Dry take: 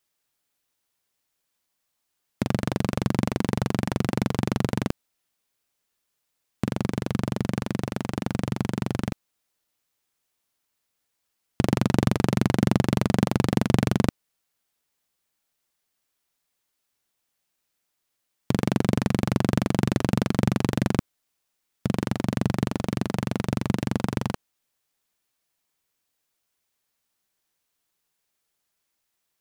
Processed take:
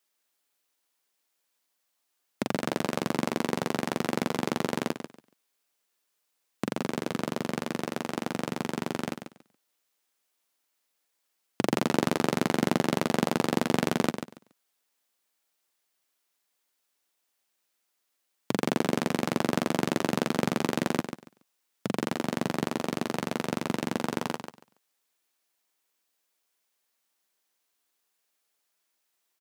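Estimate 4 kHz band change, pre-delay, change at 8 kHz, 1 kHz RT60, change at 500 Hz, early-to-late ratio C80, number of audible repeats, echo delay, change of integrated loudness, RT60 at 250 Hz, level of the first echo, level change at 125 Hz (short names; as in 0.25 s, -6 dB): +0.5 dB, none, +0.5 dB, none, 0.0 dB, none, 2, 0.141 s, -4.0 dB, none, -9.0 dB, -11.0 dB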